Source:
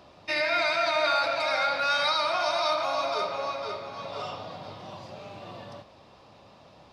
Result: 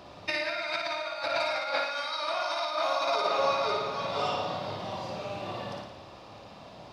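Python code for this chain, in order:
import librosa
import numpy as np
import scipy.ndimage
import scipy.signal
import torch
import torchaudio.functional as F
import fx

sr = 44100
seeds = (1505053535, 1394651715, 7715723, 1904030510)

y = fx.highpass(x, sr, hz=260.0, slope=12, at=(1.67, 3.39))
y = fx.over_compress(y, sr, threshold_db=-30.0, ratio=-0.5)
y = fx.room_flutter(y, sr, wall_m=9.7, rt60_s=0.75)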